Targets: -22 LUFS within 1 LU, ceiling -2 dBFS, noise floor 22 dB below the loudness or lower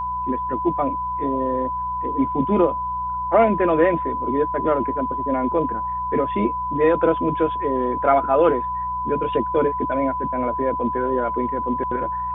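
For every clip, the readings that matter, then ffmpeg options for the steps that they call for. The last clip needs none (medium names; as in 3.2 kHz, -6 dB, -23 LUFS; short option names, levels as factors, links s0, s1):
hum 60 Hz; highest harmonic 180 Hz; hum level -37 dBFS; steady tone 1 kHz; tone level -23 dBFS; loudness -21.5 LUFS; peak level -5.0 dBFS; loudness target -22.0 LUFS
-> -af "bandreject=f=60:t=h:w=4,bandreject=f=120:t=h:w=4,bandreject=f=180:t=h:w=4"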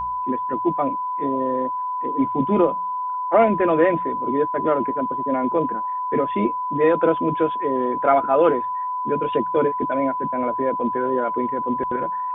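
hum not found; steady tone 1 kHz; tone level -23 dBFS
-> -af "bandreject=f=1000:w=30"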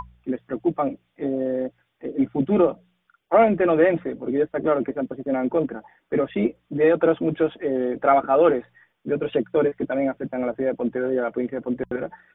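steady tone not found; loudness -23.0 LUFS; peak level -5.5 dBFS; loudness target -22.0 LUFS
-> -af "volume=1.12"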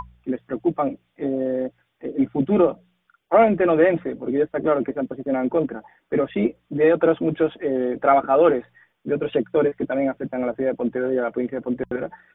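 loudness -22.0 LUFS; peak level -4.5 dBFS; noise floor -71 dBFS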